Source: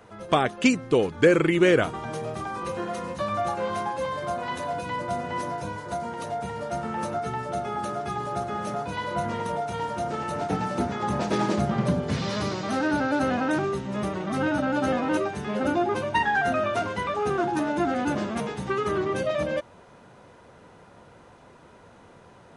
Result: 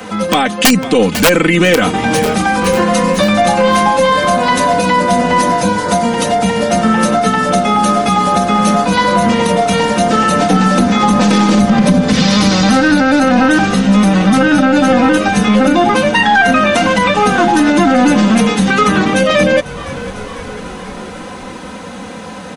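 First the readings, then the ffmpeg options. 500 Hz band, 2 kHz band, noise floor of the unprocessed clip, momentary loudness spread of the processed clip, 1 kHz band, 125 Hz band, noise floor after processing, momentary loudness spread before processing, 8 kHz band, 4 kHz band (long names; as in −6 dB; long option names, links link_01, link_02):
+13.0 dB, +16.0 dB, −52 dBFS, 14 LU, +15.5 dB, +14.5 dB, −28 dBFS, 9 LU, +21.5 dB, +19.5 dB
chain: -filter_complex "[0:a]highpass=72,equalizer=frequency=190:width_type=o:width=0.47:gain=8.5,aecho=1:1:3.9:0.9,aeval=exprs='0.891*(cos(1*acos(clip(val(0)/0.891,-1,1)))-cos(1*PI/2))+0.0447*(cos(4*acos(clip(val(0)/0.891,-1,1)))-cos(4*PI/2))+0.00501*(cos(6*acos(clip(val(0)/0.891,-1,1)))-cos(6*PI/2))+0.00631*(cos(8*acos(clip(val(0)/0.891,-1,1)))-cos(8*PI/2))':channel_layout=same,acrossover=split=150|2000[link_01][link_02][link_03];[link_03]acontrast=59[link_04];[link_01][link_02][link_04]amix=inputs=3:normalize=0,aeval=exprs='(mod(1.78*val(0)+1,2)-1)/1.78':channel_layout=same,asplit=6[link_05][link_06][link_07][link_08][link_09][link_10];[link_06]adelay=498,afreqshift=-52,volume=-22dB[link_11];[link_07]adelay=996,afreqshift=-104,volume=-26.2dB[link_12];[link_08]adelay=1494,afreqshift=-156,volume=-30.3dB[link_13];[link_09]adelay=1992,afreqshift=-208,volume=-34.5dB[link_14];[link_10]adelay=2490,afreqshift=-260,volume=-38.6dB[link_15];[link_05][link_11][link_12][link_13][link_14][link_15]amix=inputs=6:normalize=0,asplit=2[link_16][link_17];[link_17]acompressor=threshold=-33dB:ratio=6,volume=2.5dB[link_18];[link_16][link_18]amix=inputs=2:normalize=0,alimiter=level_in=12.5dB:limit=-1dB:release=50:level=0:latency=1,volume=-1dB"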